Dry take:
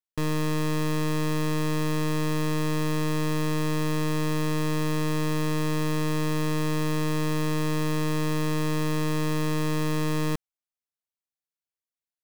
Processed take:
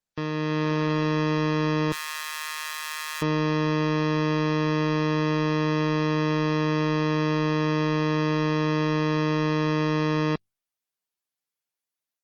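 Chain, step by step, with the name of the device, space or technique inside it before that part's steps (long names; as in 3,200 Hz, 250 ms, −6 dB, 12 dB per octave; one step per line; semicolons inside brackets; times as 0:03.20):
0:01.92–0:03.22: high-pass filter 1,200 Hz 24 dB per octave
noise-suppressed video call (high-pass filter 170 Hz 6 dB per octave; gate on every frequency bin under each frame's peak −25 dB strong; automatic gain control gain up to 5 dB; Opus 16 kbit/s 48,000 Hz)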